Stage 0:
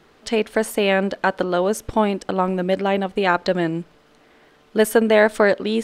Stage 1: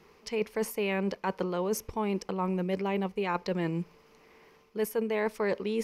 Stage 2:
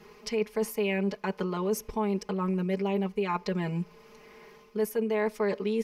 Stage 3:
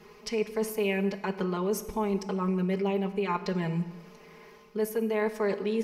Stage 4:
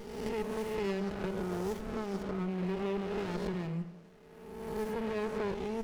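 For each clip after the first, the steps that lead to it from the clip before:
ripple EQ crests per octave 0.82, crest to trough 9 dB; reverse; compressor 6:1, threshold -21 dBFS, peak gain reduction 13 dB; reverse; high shelf 11000 Hz +3.5 dB; gain -6 dB
comb 4.8 ms, depth 99%; compressor 1.5:1, threshold -38 dBFS, peak gain reduction 7 dB; gain +2.5 dB
plate-style reverb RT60 1.4 s, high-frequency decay 0.7×, DRR 10.5 dB
spectral swells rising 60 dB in 1.36 s; LPF 11000 Hz; running maximum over 33 samples; gain -7 dB

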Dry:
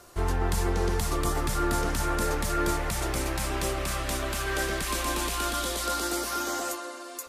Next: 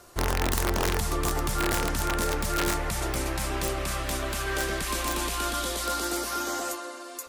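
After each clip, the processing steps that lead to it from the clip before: wrapped overs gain 18 dB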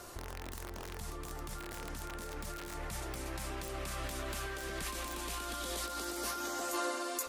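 negative-ratio compressor -36 dBFS, ratio -1; gain -4.5 dB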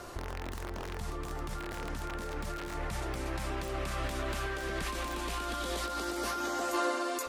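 high shelf 5800 Hz -11.5 dB; gain +5.5 dB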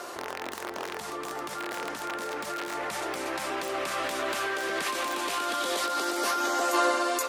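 HPF 370 Hz 12 dB/oct; gain +7.5 dB

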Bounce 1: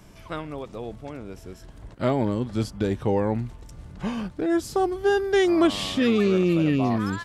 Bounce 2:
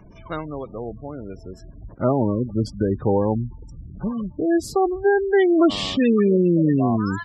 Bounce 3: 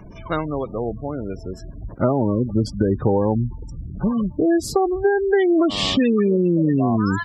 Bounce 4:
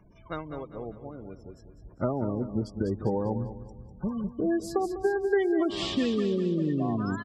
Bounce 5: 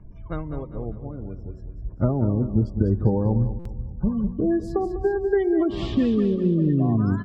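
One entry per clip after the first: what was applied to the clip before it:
spectral gate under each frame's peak -20 dB strong; gain +3.5 dB
compressor 10:1, threshold -20 dBFS, peak gain reduction 9.5 dB; gain +6 dB
feedback echo 0.199 s, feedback 50%, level -9.5 dB; upward expander 1.5:1, over -31 dBFS; gain -7.5 dB
RIAA curve playback; de-hum 186.5 Hz, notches 17; stuck buffer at 3.59, samples 256, times 10

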